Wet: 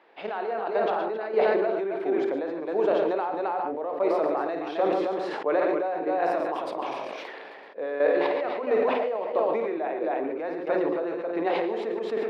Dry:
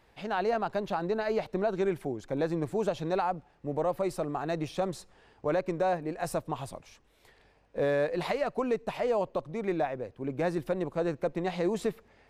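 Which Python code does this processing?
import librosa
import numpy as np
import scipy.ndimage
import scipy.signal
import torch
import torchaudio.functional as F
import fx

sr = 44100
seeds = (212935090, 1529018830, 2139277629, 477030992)

p1 = fx.hum_notches(x, sr, base_hz=60, count=10)
p2 = p1 + 10.0 ** (-7.0 / 20.0) * np.pad(p1, (int(265 * sr / 1000.0), 0))[:len(p1)]
p3 = fx.chopper(p2, sr, hz=1.5, depth_pct=65, duty_pct=40)
p4 = fx.rider(p3, sr, range_db=4, speed_s=0.5)
p5 = p3 + (p4 * librosa.db_to_amplitude(-2.0))
p6 = scipy.signal.sosfilt(scipy.signal.butter(4, 310.0, 'highpass', fs=sr, output='sos'), p5)
p7 = fx.air_absorb(p6, sr, metres=340.0)
p8 = fx.echo_multitap(p7, sr, ms=(52, 115, 143), db=(-10.0, -11.5, -15.0))
p9 = fx.sustainer(p8, sr, db_per_s=20.0)
y = p9 * librosa.db_to_amplitude(1.5)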